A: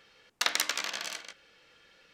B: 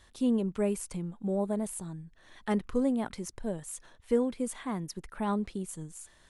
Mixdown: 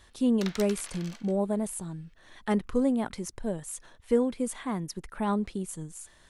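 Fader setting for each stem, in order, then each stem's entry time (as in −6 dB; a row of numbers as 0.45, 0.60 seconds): −12.0, +2.5 decibels; 0.00, 0.00 seconds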